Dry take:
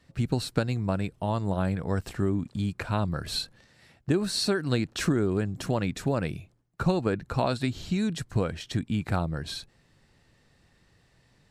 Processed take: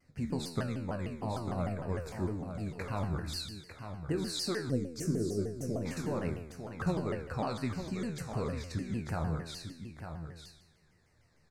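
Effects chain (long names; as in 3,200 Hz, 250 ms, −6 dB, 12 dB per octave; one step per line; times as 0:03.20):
in parallel at −4 dB: soft clipping −23 dBFS, distortion −12 dB
on the sum: flanger 1.7 Hz, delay 7.6 ms, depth 6 ms, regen +66%
Butterworth band-reject 3,200 Hz, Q 2.4
tuned comb filter 81 Hz, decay 0.88 s, harmonics all, mix 80%
on a send: single-tap delay 899 ms −8.5 dB
on the sum: gain on a spectral selection 0:04.71–0:05.86, 650–4,700 Hz −15 dB
pitch modulation by a square or saw wave saw down 6.6 Hz, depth 250 cents
level +4 dB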